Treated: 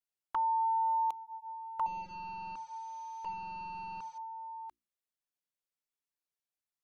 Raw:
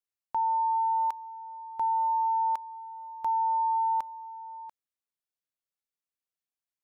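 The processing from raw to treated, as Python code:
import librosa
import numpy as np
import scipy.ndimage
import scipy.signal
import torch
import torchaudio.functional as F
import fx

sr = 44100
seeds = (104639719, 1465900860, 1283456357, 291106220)

y = fx.delta_mod(x, sr, bps=32000, step_db=-50.0, at=(1.86, 4.18))
y = fx.hum_notches(y, sr, base_hz=60, count=6)
y = fx.env_flanger(y, sr, rest_ms=6.9, full_db=-30.0)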